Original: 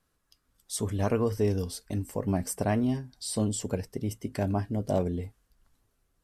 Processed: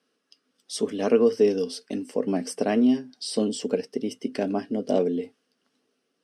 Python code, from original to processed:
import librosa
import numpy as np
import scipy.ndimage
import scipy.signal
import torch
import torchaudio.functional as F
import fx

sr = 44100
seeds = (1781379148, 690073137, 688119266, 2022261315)

y = fx.cabinet(x, sr, low_hz=210.0, low_slope=24, high_hz=8900.0, hz=(250.0, 450.0, 950.0, 2900.0, 5200.0, 7300.0), db=(7, 8, -6, 7, 6, -9))
y = y * 10.0 ** (2.5 / 20.0)